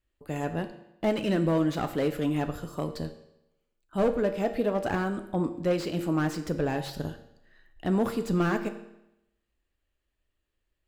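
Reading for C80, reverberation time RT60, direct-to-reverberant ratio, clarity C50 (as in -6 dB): 13.5 dB, 0.85 s, 8.0 dB, 11.5 dB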